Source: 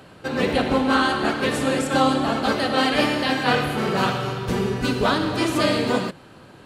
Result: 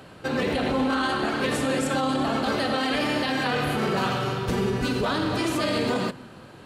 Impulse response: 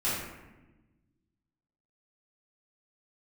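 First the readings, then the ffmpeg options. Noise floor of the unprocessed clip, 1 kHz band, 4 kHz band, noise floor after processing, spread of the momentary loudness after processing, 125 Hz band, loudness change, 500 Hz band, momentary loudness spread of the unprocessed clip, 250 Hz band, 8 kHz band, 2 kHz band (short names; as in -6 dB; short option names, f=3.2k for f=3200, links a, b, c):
-47 dBFS, -4.5 dB, -4.0 dB, -46 dBFS, 3 LU, -2.5 dB, -3.5 dB, -3.5 dB, 5 LU, -3.0 dB, -2.5 dB, -4.0 dB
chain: -filter_complex "[0:a]alimiter=limit=-16.5dB:level=0:latency=1:release=34,asplit=2[a][b];[1:a]atrim=start_sample=2205,asetrate=30870,aresample=44100[c];[b][c]afir=irnorm=-1:irlink=0,volume=-31dB[d];[a][d]amix=inputs=2:normalize=0"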